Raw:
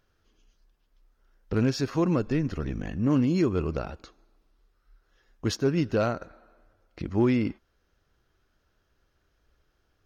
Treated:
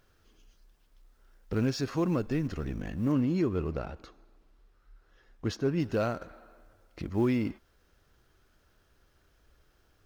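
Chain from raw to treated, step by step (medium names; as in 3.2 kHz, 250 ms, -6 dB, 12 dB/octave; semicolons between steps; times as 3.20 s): companding laws mixed up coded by mu; 3.12–5.80 s: treble shelf 4.8 kHz -10 dB; trim -4.5 dB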